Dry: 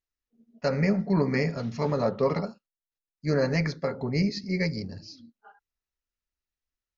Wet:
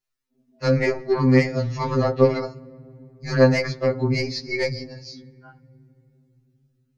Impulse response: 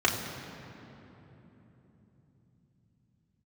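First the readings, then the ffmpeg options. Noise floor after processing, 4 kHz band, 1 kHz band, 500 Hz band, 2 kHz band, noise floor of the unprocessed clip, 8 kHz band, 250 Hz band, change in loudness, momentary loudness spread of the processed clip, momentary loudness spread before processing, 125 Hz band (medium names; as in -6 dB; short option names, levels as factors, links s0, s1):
-71 dBFS, +6.0 dB, +5.5 dB, +7.0 dB, +6.5 dB, under -85 dBFS, no reading, +4.0 dB, +6.0 dB, 17 LU, 11 LU, +5.5 dB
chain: -filter_complex "[0:a]aeval=exprs='0.237*(cos(1*acos(clip(val(0)/0.237,-1,1)))-cos(1*PI/2))+0.0266*(cos(2*acos(clip(val(0)/0.237,-1,1)))-cos(2*PI/2))+0.0133*(cos(3*acos(clip(val(0)/0.237,-1,1)))-cos(3*PI/2))+0.0133*(cos(4*acos(clip(val(0)/0.237,-1,1)))-cos(4*PI/2))':c=same,asplit=2[s0][s1];[1:a]atrim=start_sample=2205,asetrate=52920,aresample=44100[s2];[s1][s2]afir=irnorm=-1:irlink=0,volume=0.0282[s3];[s0][s3]amix=inputs=2:normalize=0,afftfilt=real='re*2.45*eq(mod(b,6),0)':imag='im*2.45*eq(mod(b,6),0)':win_size=2048:overlap=0.75,volume=2.82"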